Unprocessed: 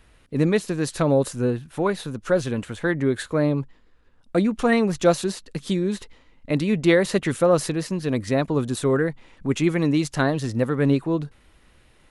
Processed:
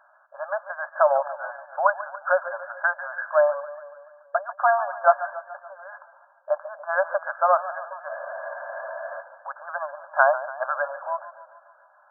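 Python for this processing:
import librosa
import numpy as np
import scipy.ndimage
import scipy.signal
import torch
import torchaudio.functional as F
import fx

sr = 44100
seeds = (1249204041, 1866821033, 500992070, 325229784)

y = fx.brickwall_bandpass(x, sr, low_hz=560.0, high_hz=1700.0)
y = fx.spec_freeze(y, sr, seeds[0], at_s=8.1, hold_s=1.11)
y = fx.echo_warbled(y, sr, ms=143, feedback_pct=59, rate_hz=2.8, cents=74, wet_db=-14.5)
y = y * 10.0 ** (8.0 / 20.0)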